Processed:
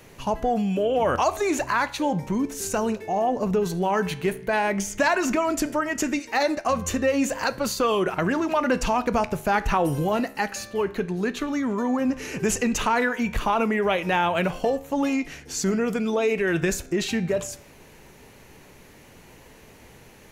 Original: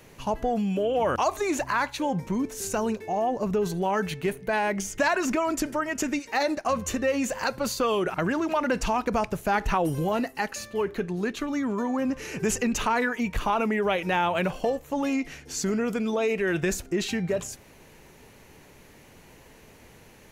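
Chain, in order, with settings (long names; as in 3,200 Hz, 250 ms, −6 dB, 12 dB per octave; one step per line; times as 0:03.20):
flanger 0.13 Hz, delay 10 ms, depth 6.7 ms, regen +86%
level +7 dB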